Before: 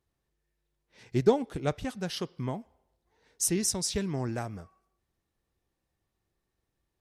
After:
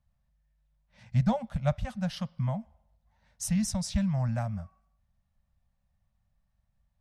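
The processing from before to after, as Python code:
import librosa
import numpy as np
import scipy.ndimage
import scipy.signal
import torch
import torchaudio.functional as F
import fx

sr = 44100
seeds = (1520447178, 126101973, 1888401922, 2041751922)

y = scipy.signal.sosfilt(scipy.signal.ellip(3, 1.0, 40, [220.0, 570.0], 'bandstop', fs=sr, output='sos'), x)
y = fx.tilt_eq(y, sr, slope=-2.5)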